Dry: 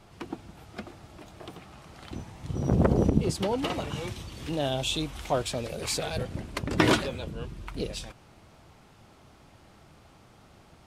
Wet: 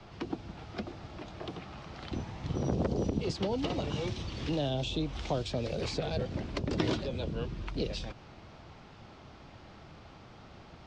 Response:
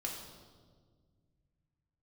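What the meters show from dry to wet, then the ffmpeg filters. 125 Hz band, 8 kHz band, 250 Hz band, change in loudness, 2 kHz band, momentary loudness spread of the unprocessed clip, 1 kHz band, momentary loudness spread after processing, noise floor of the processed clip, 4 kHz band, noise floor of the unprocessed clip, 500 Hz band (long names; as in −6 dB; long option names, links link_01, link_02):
−4.0 dB, −12.0 dB, −4.5 dB, −6.0 dB, −8.5 dB, 22 LU, −6.5 dB, 21 LU, −53 dBFS, −5.5 dB, −56 dBFS, −4.0 dB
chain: -filter_complex "[0:a]lowpass=frequency=5500:width=0.5412,lowpass=frequency=5500:width=1.3066,acrossover=split=160|340|690|3500[link_01][link_02][link_03][link_04][link_05];[link_01]acompressor=threshold=-39dB:ratio=4[link_06];[link_02]acompressor=threshold=-42dB:ratio=4[link_07];[link_03]acompressor=threshold=-39dB:ratio=4[link_08];[link_04]acompressor=threshold=-50dB:ratio=4[link_09];[link_05]acompressor=threshold=-46dB:ratio=4[link_10];[link_06][link_07][link_08][link_09][link_10]amix=inputs=5:normalize=0,volume=3.5dB"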